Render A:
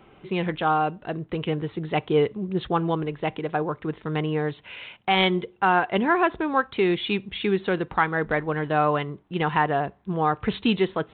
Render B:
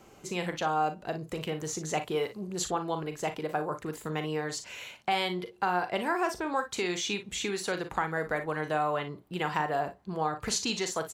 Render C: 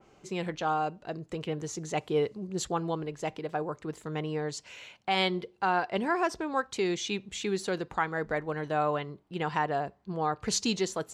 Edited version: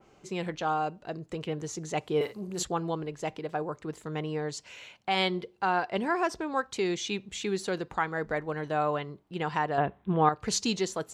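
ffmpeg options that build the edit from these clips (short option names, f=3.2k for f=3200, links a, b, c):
-filter_complex "[2:a]asplit=3[a][b][c];[a]atrim=end=2.212[d];[1:a]atrim=start=2.208:end=2.632[e];[b]atrim=start=2.628:end=9.782[f];[0:a]atrim=start=9.778:end=10.292[g];[c]atrim=start=10.288[h];[d][e]acrossfade=d=0.004:c1=hsin:c2=hsin[i];[i][f]acrossfade=d=0.004:c1=hsin:c2=hsin[j];[j][g]acrossfade=d=0.004:c1=hsin:c2=hsin[k];[k][h]acrossfade=d=0.004:c1=hsin:c2=hsin"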